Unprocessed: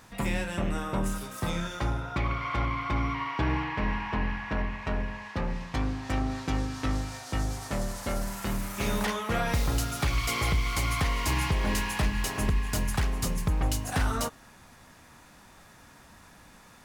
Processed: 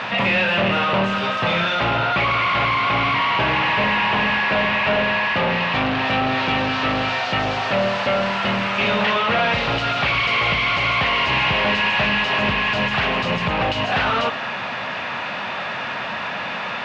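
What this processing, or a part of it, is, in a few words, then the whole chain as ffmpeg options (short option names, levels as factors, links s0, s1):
overdrive pedal into a guitar cabinet: -filter_complex "[0:a]asplit=2[s0][s1];[s1]highpass=f=720:p=1,volume=50.1,asoftclip=type=tanh:threshold=0.133[s2];[s0][s2]amix=inputs=2:normalize=0,lowpass=f=5100:p=1,volume=0.501,highpass=92,equalizer=f=120:t=q:w=4:g=5,equalizer=f=200:t=q:w=4:g=3,equalizer=f=310:t=q:w=4:g=-6,equalizer=f=610:t=q:w=4:g=5,equalizer=f=2700:t=q:w=4:g=7,lowpass=f=3800:w=0.5412,lowpass=f=3800:w=1.3066,volume=1.5"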